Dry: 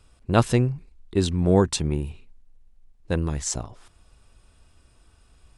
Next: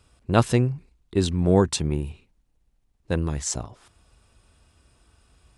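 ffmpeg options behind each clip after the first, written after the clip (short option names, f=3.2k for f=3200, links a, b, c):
-af "highpass=45"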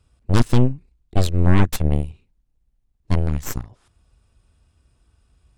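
-af "aeval=exprs='0.668*(cos(1*acos(clip(val(0)/0.668,-1,1)))-cos(1*PI/2))+0.299*(cos(8*acos(clip(val(0)/0.668,-1,1)))-cos(8*PI/2))':c=same,lowshelf=f=210:g=9,volume=-7.5dB"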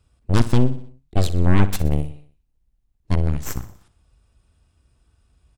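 -af "aecho=1:1:61|122|183|244|305:0.178|0.0925|0.0481|0.025|0.013,volume=-1dB"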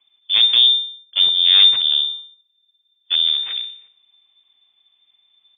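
-af "lowpass=f=3.1k:t=q:w=0.5098,lowpass=f=3.1k:t=q:w=0.6013,lowpass=f=3.1k:t=q:w=0.9,lowpass=f=3.1k:t=q:w=2.563,afreqshift=-3600"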